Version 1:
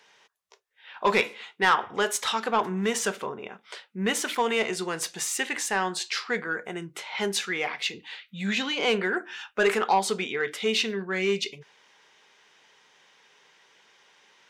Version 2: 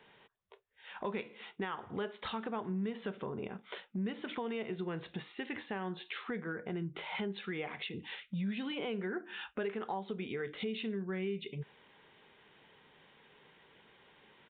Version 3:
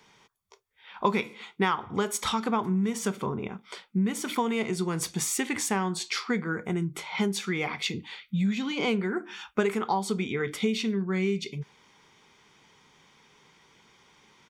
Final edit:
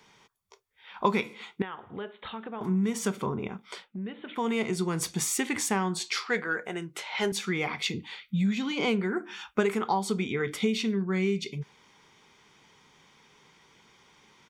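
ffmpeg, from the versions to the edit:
-filter_complex "[1:a]asplit=2[a][b];[2:a]asplit=4[c][d][e][f];[c]atrim=end=1.622[g];[a]atrim=start=1.618:end=2.612[h];[d]atrim=start=2.608:end=3.92[i];[b]atrim=start=3.82:end=4.45[j];[e]atrim=start=4.35:end=6.262[k];[0:a]atrim=start=6.258:end=7.322[l];[f]atrim=start=7.318[m];[g][h]acrossfade=d=0.004:c1=hsin:c2=hsin[n];[n][i]acrossfade=d=0.004:c1=hsin:c2=hsin[o];[o][j]acrossfade=d=0.1:c1=tri:c2=tri[p];[p][k]acrossfade=d=0.1:c1=tri:c2=tri[q];[q][l]acrossfade=d=0.004:c1=hsin:c2=hsin[r];[r][m]acrossfade=d=0.004:c1=hsin:c2=hsin"

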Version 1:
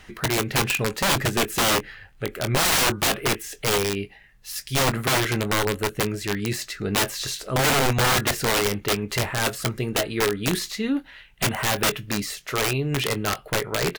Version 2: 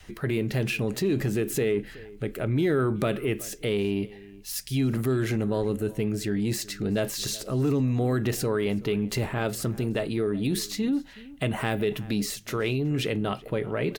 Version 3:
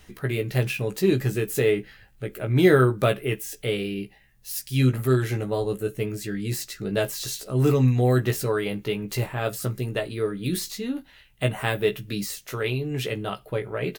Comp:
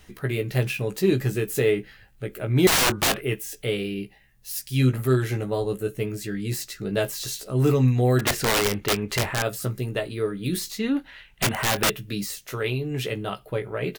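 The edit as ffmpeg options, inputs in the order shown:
-filter_complex "[0:a]asplit=3[a][b][c];[2:a]asplit=4[d][e][f][g];[d]atrim=end=2.672[h];[a]atrim=start=2.668:end=3.212[i];[e]atrim=start=3.208:end=8.192[j];[b]atrim=start=8.188:end=9.422[k];[f]atrim=start=9.418:end=10.792[l];[c]atrim=start=10.788:end=11.902[m];[g]atrim=start=11.898[n];[h][i]acrossfade=d=0.004:c1=hsin:c2=hsin[o];[o][j]acrossfade=d=0.004:c1=hsin:c2=hsin[p];[p][k]acrossfade=d=0.004:c1=hsin:c2=hsin[q];[q][l]acrossfade=d=0.004:c1=hsin:c2=hsin[r];[r][m]acrossfade=d=0.004:c1=hsin:c2=hsin[s];[s][n]acrossfade=d=0.004:c1=hsin:c2=hsin"

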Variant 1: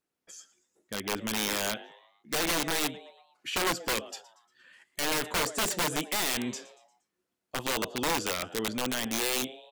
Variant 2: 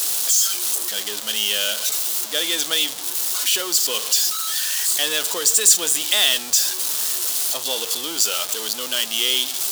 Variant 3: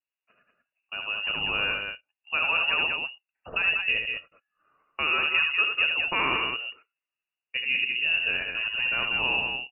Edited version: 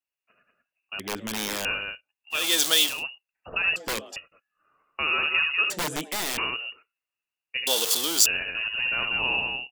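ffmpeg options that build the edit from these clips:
-filter_complex "[0:a]asplit=3[a][b][c];[1:a]asplit=2[d][e];[2:a]asplit=6[f][g][h][i][j][k];[f]atrim=end=0.992[l];[a]atrim=start=0.988:end=1.652[m];[g]atrim=start=1.648:end=2.54[n];[d]atrim=start=2.3:end=3.04[o];[h]atrim=start=2.8:end=3.762[p];[b]atrim=start=3.758:end=4.162[q];[i]atrim=start=4.158:end=5.702[r];[c]atrim=start=5.698:end=6.382[s];[j]atrim=start=6.378:end=7.672[t];[e]atrim=start=7.668:end=8.262[u];[k]atrim=start=8.258[v];[l][m]acrossfade=d=0.004:c1=hsin:c2=hsin[w];[w][n]acrossfade=d=0.004:c1=hsin:c2=hsin[x];[x][o]acrossfade=d=0.24:c1=tri:c2=tri[y];[y][p]acrossfade=d=0.24:c1=tri:c2=tri[z];[z][q]acrossfade=d=0.004:c1=hsin:c2=hsin[aa];[aa][r]acrossfade=d=0.004:c1=hsin:c2=hsin[ab];[ab][s]acrossfade=d=0.004:c1=hsin:c2=hsin[ac];[ac][t]acrossfade=d=0.004:c1=hsin:c2=hsin[ad];[ad][u]acrossfade=d=0.004:c1=hsin:c2=hsin[ae];[ae][v]acrossfade=d=0.004:c1=hsin:c2=hsin"

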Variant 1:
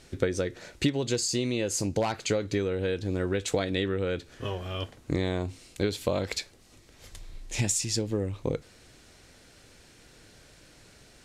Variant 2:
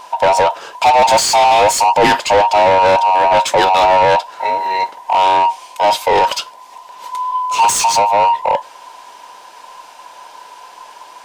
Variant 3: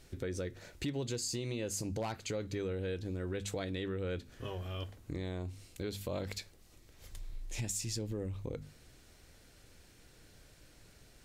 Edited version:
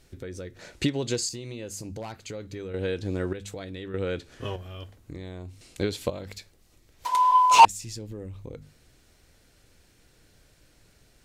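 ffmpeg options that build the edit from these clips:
-filter_complex "[0:a]asplit=4[a][b][c][d];[2:a]asplit=6[e][f][g][h][i][j];[e]atrim=end=0.592[k];[a]atrim=start=0.588:end=1.292[l];[f]atrim=start=1.288:end=2.742[m];[b]atrim=start=2.738:end=3.332[n];[g]atrim=start=3.328:end=3.942[o];[c]atrim=start=3.938:end=4.562[p];[h]atrim=start=4.558:end=5.612[q];[d]atrim=start=5.608:end=6.102[r];[i]atrim=start=6.098:end=7.052[s];[1:a]atrim=start=7.048:end=7.652[t];[j]atrim=start=7.648[u];[k][l]acrossfade=d=0.004:c1=hsin:c2=hsin[v];[v][m]acrossfade=d=0.004:c1=hsin:c2=hsin[w];[w][n]acrossfade=d=0.004:c1=hsin:c2=hsin[x];[x][o]acrossfade=d=0.004:c1=hsin:c2=hsin[y];[y][p]acrossfade=d=0.004:c1=hsin:c2=hsin[z];[z][q]acrossfade=d=0.004:c1=hsin:c2=hsin[aa];[aa][r]acrossfade=d=0.004:c1=hsin:c2=hsin[ab];[ab][s]acrossfade=d=0.004:c1=hsin:c2=hsin[ac];[ac][t]acrossfade=d=0.004:c1=hsin:c2=hsin[ad];[ad][u]acrossfade=d=0.004:c1=hsin:c2=hsin"

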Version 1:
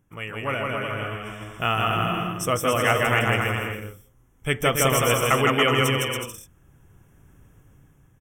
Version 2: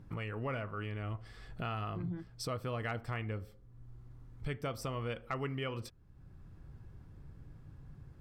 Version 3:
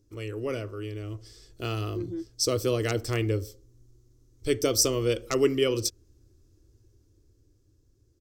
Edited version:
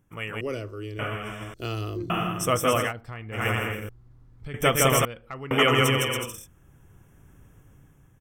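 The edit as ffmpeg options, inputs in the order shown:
-filter_complex "[2:a]asplit=2[a][b];[1:a]asplit=3[c][d][e];[0:a]asplit=6[f][g][h][i][j][k];[f]atrim=end=0.412[l];[a]atrim=start=0.408:end=0.992[m];[g]atrim=start=0.988:end=1.542[n];[b]atrim=start=1.538:end=2.102[o];[h]atrim=start=2.098:end=2.93[p];[c]atrim=start=2.77:end=3.47[q];[i]atrim=start=3.31:end=3.892[r];[d]atrim=start=3.888:end=4.542[s];[j]atrim=start=4.538:end=5.052[t];[e]atrim=start=5.048:end=5.512[u];[k]atrim=start=5.508[v];[l][m]acrossfade=d=0.004:c1=hsin:c2=hsin[w];[w][n]acrossfade=d=0.004:c1=hsin:c2=hsin[x];[x][o]acrossfade=d=0.004:c1=hsin:c2=hsin[y];[y][p]acrossfade=d=0.004:c1=hsin:c2=hsin[z];[z][q]acrossfade=d=0.16:c1=tri:c2=tri[aa];[aa][r]acrossfade=d=0.16:c1=tri:c2=tri[ab];[ab][s]acrossfade=d=0.004:c1=hsin:c2=hsin[ac];[ac][t]acrossfade=d=0.004:c1=hsin:c2=hsin[ad];[ad][u]acrossfade=d=0.004:c1=hsin:c2=hsin[ae];[ae][v]acrossfade=d=0.004:c1=hsin:c2=hsin"

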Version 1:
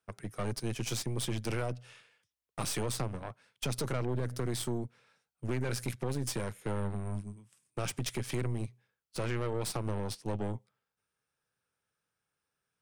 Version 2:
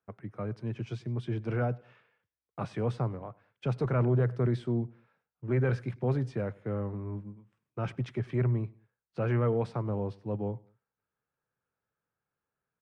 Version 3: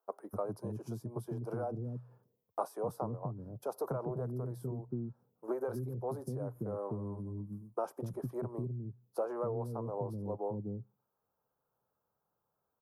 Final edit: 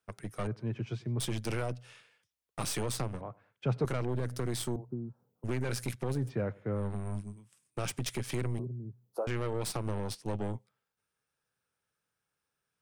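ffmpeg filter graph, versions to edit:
-filter_complex "[1:a]asplit=3[a][b][c];[2:a]asplit=2[d][e];[0:a]asplit=6[f][g][h][i][j][k];[f]atrim=end=0.472[l];[a]atrim=start=0.468:end=1.202[m];[g]atrim=start=1.198:end=3.212[n];[b]atrim=start=3.208:end=3.852[o];[h]atrim=start=3.848:end=4.762[p];[d]atrim=start=4.758:end=5.442[q];[i]atrim=start=5.438:end=6.31[r];[c]atrim=start=6.07:end=6.94[s];[j]atrim=start=6.7:end=8.592[t];[e]atrim=start=8.588:end=9.272[u];[k]atrim=start=9.268[v];[l][m]acrossfade=d=0.004:c1=hsin:c2=hsin[w];[w][n]acrossfade=d=0.004:c1=hsin:c2=hsin[x];[x][o]acrossfade=d=0.004:c1=hsin:c2=hsin[y];[y][p]acrossfade=d=0.004:c1=hsin:c2=hsin[z];[z][q]acrossfade=d=0.004:c1=hsin:c2=hsin[aa];[aa][r]acrossfade=d=0.004:c1=hsin:c2=hsin[ab];[ab][s]acrossfade=d=0.24:c1=tri:c2=tri[ac];[ac][t]acrossfade=d=0.24:c1=tri:c2=tri[ad];[ad][u]acrossfade=d=0.004:c1=hsin:c2=hsin[ae];[ae][v]acrossfade=d=0.004:c1=hsin:c2=hsin"

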